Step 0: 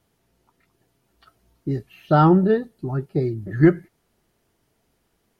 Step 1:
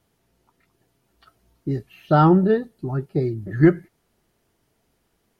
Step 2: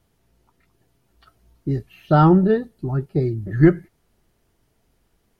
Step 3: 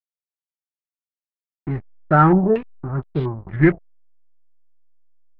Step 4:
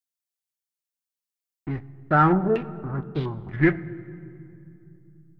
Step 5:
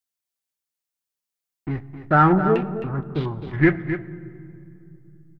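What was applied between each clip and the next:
nothing audible
low shelf 81 Hz +11 dB
backlash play -23.5 dBFS; stepped low-pass 4.3 Hz 630–3400 Hz; gain -1.5 dB
high shelf 2800 Hz +11.5 dB; on a send at -13.5 dB: reverb RT60 2.6 s, pre-delay 3 ms; on the sum: gain -5 dB
echo 0.263 s -10.5 dB; gain +2.5 dB

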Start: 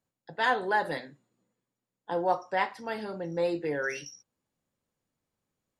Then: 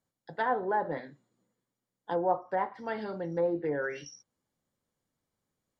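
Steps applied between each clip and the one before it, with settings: treble ducked by the level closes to 1000 Hz, closed at -25.5 dBFS; notch 2600 Hz, Q 7.5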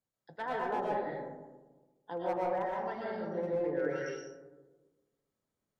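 one-sided clip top -24 dBFS; digital reverb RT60 1.3 s, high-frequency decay 0.3×, pre-delay 80 ms, DRR -4 dB; gain -8.5 dB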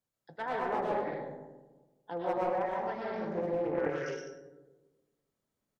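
on a send: feedback echo 0.101 s, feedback 17%, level -10 dB; on the sum: Doppler distortion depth 0.31 ms; gain +1 dB

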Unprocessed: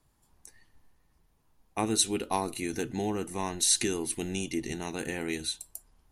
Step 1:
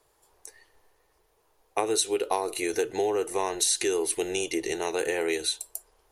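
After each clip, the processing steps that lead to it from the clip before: resonant low shelf 310 Hz -11.5 dB, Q 3; compressor 6:1, threshold -28 dBFS, peak gain reduction 8.5 dB; gain +6 dB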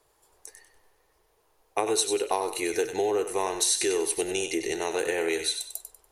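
thinning echo 96 ms, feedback 31%, high-pass 660 Hz, level -7.5 dB

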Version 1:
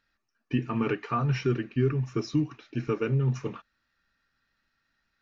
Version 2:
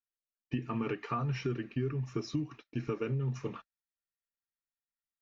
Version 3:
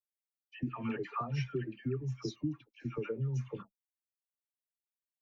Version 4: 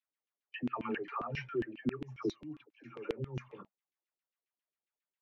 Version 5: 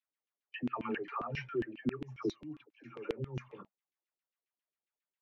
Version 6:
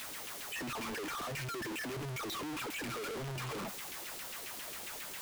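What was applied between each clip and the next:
gate -44 dBFS, range -29 dB; notch 1500 Hz, Q 17; compressor 3:1, threshold -30 dBFS, peak gain reduction 8 dB; gain -1.5 dB
per-bin expansion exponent 1.5; dispersion lows, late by 98 ms, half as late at 980 Hz
LFO band-pass saw down 7.4 Hz 270–2900 Hz; gain +10.5 dB
nothing audible
infinite clipping; gain +2 dB

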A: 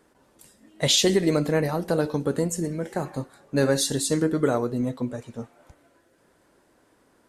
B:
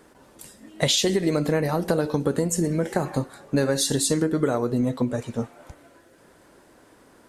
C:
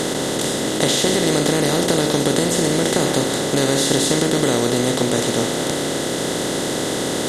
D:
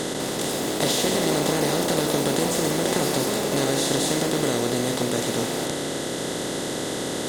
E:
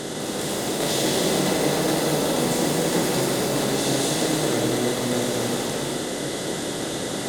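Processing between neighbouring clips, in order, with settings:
compressor 6:1, threshold -27 dBFS, peak gain reduction 11 dB; gain +8 dB
per-bin compression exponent 0.2; gain -3 dB
echoes that change speed 0.201 s, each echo +5 st, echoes 3, each echo -6 dB; gain -6 dB
non-linear reverb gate 0.44 s flat, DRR -2.5 dB; gain -4 dB

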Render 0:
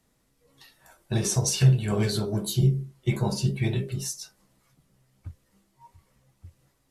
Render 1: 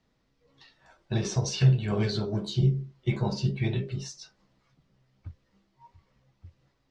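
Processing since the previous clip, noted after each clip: LPF 5300 Hz 24 dB/oct; gain -2 dB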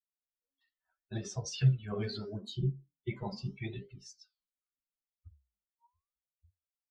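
per-bin expansion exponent 2; flange 0.77 Hz, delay 4.8 ms, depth 7.7 ms, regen -85%

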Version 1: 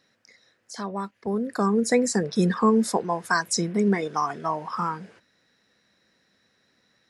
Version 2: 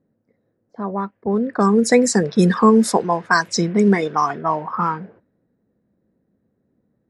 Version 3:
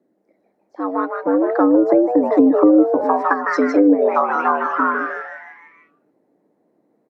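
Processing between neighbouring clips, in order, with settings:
low-pass opened by the level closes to 360 Hz, open at -18.5 dBFS; gain +7 dB
frequency-shifting echo 0.154 s, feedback 51%, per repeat +150 Hz, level -6 dB; treble ducked by the level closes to 360 Hz, closed at -10 dBFS; frequency shift +90 Hz; gain +2.5 dB

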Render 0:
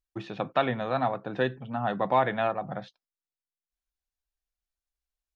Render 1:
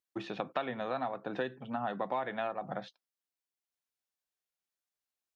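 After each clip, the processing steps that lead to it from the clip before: HPF 190 Hz 12 dB/oct; compressor 4:1, threshold -32 dBFS, peak gain reduction 12 dB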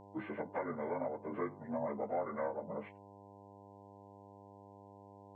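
inharmonic rescaling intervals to 79%; buzz 100 Hz, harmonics 10, -55 dBFS -1 dB/oct; gain -1 dB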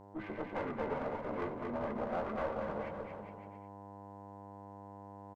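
one diode to ground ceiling -43 dBFS; bouncing-ball echo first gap 0.23 s, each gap 0.8×, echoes 5; gain +2 dB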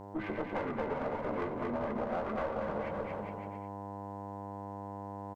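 compressor 3:1, threshold -41 dBFS, peak gain reduction 8 dB; gain +8 dB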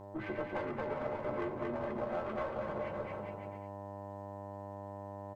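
resonator 120 Hz, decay 0.15 s, harmonics odd, mix 80%; gain +6 dB

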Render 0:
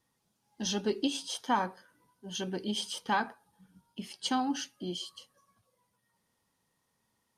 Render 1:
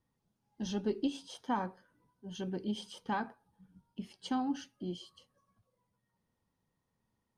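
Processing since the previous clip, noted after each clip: tilt -2.5 dB/oct; gain -6.5 dB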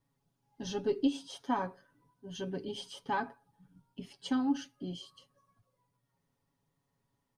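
comb 7.2 ms, depth 74%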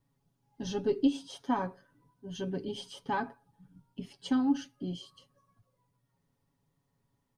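low shelf 330 Hz +5 dB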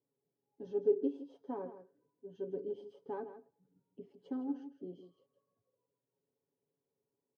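band-pass 430 Hz, Q 4; echo 0.16 s -12 dB; gain +1.5 dB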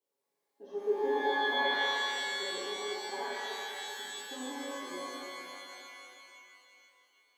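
HPF 530 Hz 12 dB/oct; shimmer reverb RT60 2.8 s, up +12 st, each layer -2 dB, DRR -8 dB

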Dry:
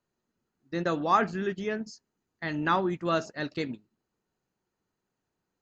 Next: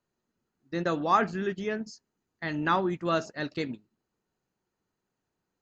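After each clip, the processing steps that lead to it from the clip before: nothing audible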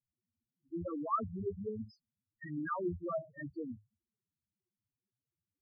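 octaver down 1 oct, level -2 dB; loudest bins only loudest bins 2; gain -4.5 dB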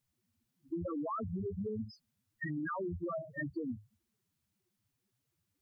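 limiter -35.5 dBFS, peak gain reduction 11.5 dB; compressor, threshold -46 dBFS, peak gain reduction 8 dB; gain +10.5 dB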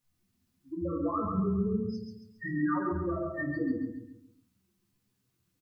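on a send: feedback echo 0.137 s, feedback 39%, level -4 dB; on the sum: shoebox room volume 210 m³, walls furnished, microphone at 1.9 m

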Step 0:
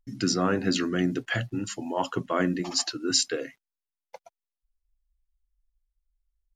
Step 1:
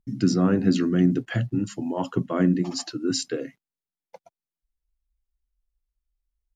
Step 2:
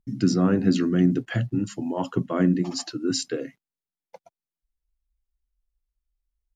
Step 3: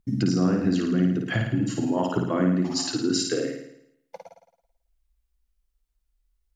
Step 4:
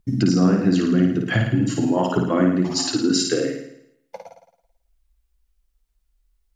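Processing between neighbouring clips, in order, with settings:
bell 170 Hz +14 dB 2.7 oct; gain -5.5 dB
nothing audible
compressor 4:1, threshold -27 dBFS, peak gain reduction 11 dB; flutter echo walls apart 9.4 m, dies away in 0.75 s; gain +4.5 dB
flange 0.37 Hz, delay 1.7 ms, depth 8 ms, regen -61%; gain +9 dB

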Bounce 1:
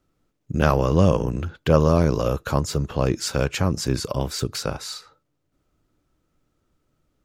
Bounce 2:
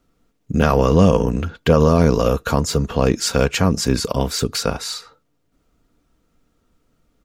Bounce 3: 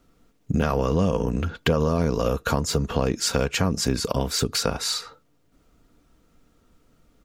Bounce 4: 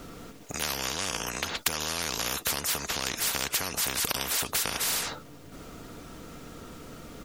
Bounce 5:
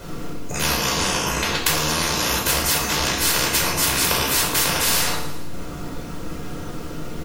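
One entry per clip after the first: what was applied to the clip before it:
comb 4.3 ms, depth 39%; maximiser +6.5 dB; gain -1 dB
compressor 3:1, threshold -25 dBFS, peak gain reduction 13 dB; gain +3.5 dB
spectral compressor 10:1
feedback echo 0.112 s, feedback 53%, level -12.5 dB; shoebox room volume 820 m³, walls furnished, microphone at 5 m; gain +3.5 dB

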